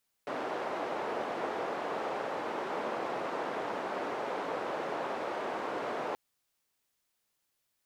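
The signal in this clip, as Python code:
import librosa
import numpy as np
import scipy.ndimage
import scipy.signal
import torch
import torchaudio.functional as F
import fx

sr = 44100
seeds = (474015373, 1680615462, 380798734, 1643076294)

y = fx.band_noise(sr, seeds[0], length_s=5.88, low_hz=410.0, high_hz=720.0, level_db=-35.5)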